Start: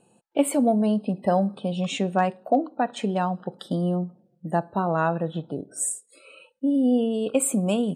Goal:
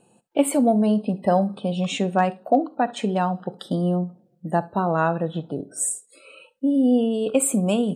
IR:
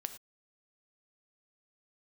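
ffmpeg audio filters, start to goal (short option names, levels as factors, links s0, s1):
-filter_complex "[0:a]asplit=2[s0][s1];[1:a]atrim=start_sample=2205,atrim=end_sample=3528[s2];[s1][s2]afir=irnorm=-1:irlink=0,volume=1[s3];[s0][s3]amix=inputs=2:normalize=0,volume=0.708"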